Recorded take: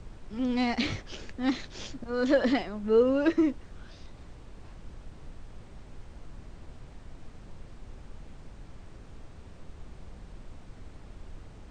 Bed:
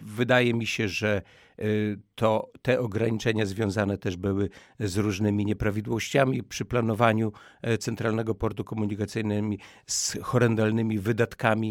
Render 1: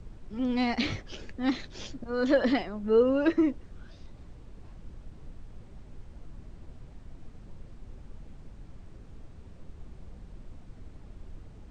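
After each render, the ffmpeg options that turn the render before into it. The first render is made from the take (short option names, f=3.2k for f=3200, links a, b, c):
-af "afftdn=nr=6:nf=-49"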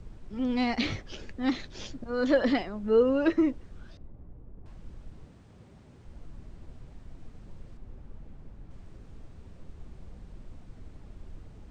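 -filter_complex "[0:a]asettb=1/sr,asplit=3[a][b][c];[a]atrim=end=3.974[d];[b]atrim=start=3.97:end=4.66,asetpts=PTS-STARTPTS,afade=t=in:d=0.004:c=qsin,afade=t=out:st=0.686:d=0.004:c=qsin,adynamicsmooth=sensitivity=8:basefreq=720[e];[c]atrim=start=4.656[f];[d][e]acrossfade=d=0.004:c1=hsin:c2=qsin[g];[g][f]acrossfade=d=0.004:c1=qsin:c2=hsin,asettb=1/sr,asplit=3[h][i][j];[h]atrim=end=5.244[k];[i]atrim=start=5.24:end=6.05,asetpts=PTS-STARTPTS,afade=t=in:d=0.004:c=qsin,afade=t=out:st=0.806:d=0.004:c=qsin,highpass=92[l];[j]atrim=start=6.046[m];[k][l]acrossfade=d=0.004:c1=hsin:c2=qsin[n];[n][m]acrossfade=d=0.004:c1=qsin:c2=hsin,asettb=1/sr,asplit=3[o][p][q];[o]atrim=end=7.774[r];[p]atrim=start=7.77:end=8.71,asetpts=PTS-STARTPTS,afade=t=in:d=0.004:c=qsin,afade=t=out:st=0.936:d=0.004:c=qsin,highshelf=f=2.9k:g=-9.5[s];[q]atrim=start=8.706[t];[r][s]acrossfade=d=0.004:c1=hsin:c2=qsin[u];[u][t]acrossfade=d=0.004:c1=qsin:c2=hsin"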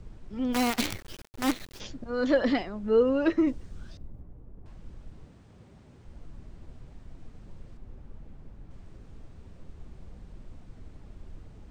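-filter_complex "[0:a]asplit=3[a][b][c];[a]afade=t=out:st=0.52:d=0.02[d];[b]acrusher=bits=5:dc=4:mix=0:aa=0.000001,afade=t=in:st=0.52:d=0.02,afade=t=out:st=1.79:d=0.02[e];[c]afade=t=in:st=1.79:d=0.02[f];[d][e][f]amix=inputs=3:normalize=0,asettb=1/sr,asplit=3[g][h][i];[g]atrim=end=3.474[j];[h]atrim=start=3.47:end=4.22,asetpts=PTS-STARTPTS,afade=t=in:d=0.004:c=qsin,afade=t=out:st=0.746:d=0.004:c=qsin,bass=f=250:g=4,treble=f=4k:g=8[k];[i]atrim=start=4.216[l];[j][k]acrossfade=d=0.004:c1=hsin:c2=qsin[m];[m][l]acrossfade=d=0.004:c1=qsin:c2=hsin"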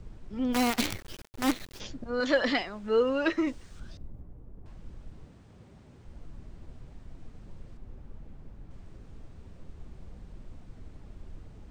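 -filter_complex "[0:a]asettb=1/sr,asplit=3[a][b][c];[a]atrim=end=2.204[d];[b]atrim=start=2.2:end=3.8,asetpts=PTS-STARTPTS,afade=t=in:d=0.004:c=qsin,afade=t=out:st=1.596:d=0.004:c=qsin,tiltshelf=f=730:g=-6.5[e];[c]atrim=start=3.796[f];[d][e]acrossfade=d=0.004:c1=hsin:c2=qsin[g];[g][f]acrossfade=d=0.004:c1=qsin:c2=hsin"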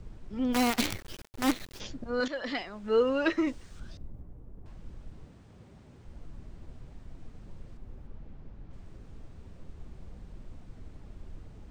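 -filter_complex "[0:a]asettb=1/sr,asplit=3[a][b][c];[a]atrim=end=8.074[d];[b]atrim=start=8.07:end=8.73,asetpts=PTS-STARTPTS,afade=t=in:d=0.004:c=qsin,afade=t=out:st=0.656:d=0.004:c=qsin,lowpass=5.7k[e];[c]atrim=start=8.726[f];[d][e]acrossfade=d=0.004:c1=hsin:c2=qsin[g];[g][f]acrossfade=d=0.004:c1=qsin:c2=hsin,asplit=2[h][i];[h]atrim=end=2.28,asetpts=PTS-STARTPTS,afade=t=out:st=2.276:d=0.004:c=hsin:silence=0.177828[j];[i]atrim=start=2.28,asetpts=PTS-STARTPTS,afade=t=in:d=0.67:silence=0.177828[k];[j][k]concat=n=2:v=0:a=1"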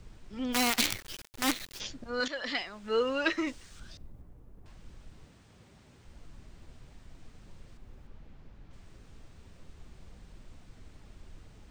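-af "tiltshelf=f=1.2k:g=-5.5"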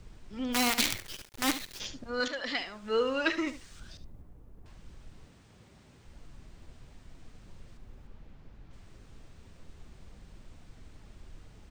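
-af "aecho=1:1:73:0.224"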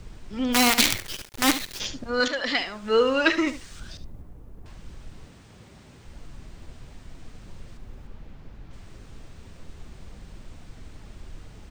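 -af "volume=8dB"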